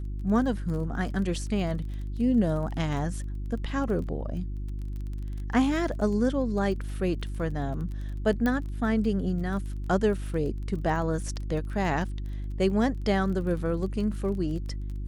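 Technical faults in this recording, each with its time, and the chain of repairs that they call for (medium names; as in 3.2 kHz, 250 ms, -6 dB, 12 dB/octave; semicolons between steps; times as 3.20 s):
crackle 23 per s -36 dBFS
hum 50 Hz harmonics 7 -33 dBFS
8.46 s: pop -16 dBFS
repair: de-click; de-hum 50 Hz, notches 7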